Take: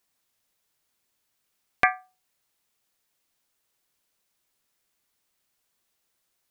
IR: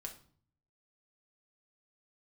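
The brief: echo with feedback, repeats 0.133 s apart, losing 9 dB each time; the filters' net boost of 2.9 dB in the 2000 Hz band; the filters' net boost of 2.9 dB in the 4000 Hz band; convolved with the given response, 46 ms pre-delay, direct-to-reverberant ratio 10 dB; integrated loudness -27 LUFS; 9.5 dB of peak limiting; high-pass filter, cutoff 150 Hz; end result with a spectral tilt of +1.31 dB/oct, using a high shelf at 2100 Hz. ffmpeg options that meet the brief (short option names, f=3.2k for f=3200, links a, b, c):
-filter_complex "[0:a]highpass=150,equalizer=f=2k:t=o:g=4.5,highshelf=f=2.1k:g=-4.5,equalizer=f=4k:t=o:g=6.5,alimiter=limit=-11dB:level=0:latency=1,aecho=1:1:133|266|399|532:0.355|0.124|0.0435|0.0152,asplit=2[a][b];[1:a]atrim=start_sample=2205,adelay=46[c];[b][c]afir=irnorm=-1:irlink=0,volume=-6.5dB[d];[a][d]amix=inputs=2:normalize=0,volume=2dB"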